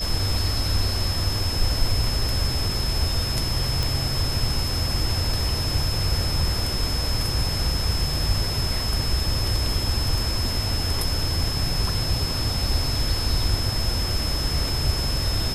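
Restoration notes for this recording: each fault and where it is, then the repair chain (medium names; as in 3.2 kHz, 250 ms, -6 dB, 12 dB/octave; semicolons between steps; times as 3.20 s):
whine 5.2 kHz -28 dBFS
3.83 s: pop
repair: de-click; band-stop 5.2 kHz, Q 30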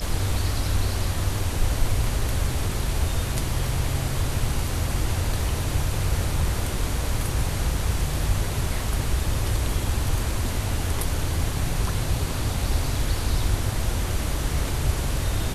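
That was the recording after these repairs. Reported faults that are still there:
nothing left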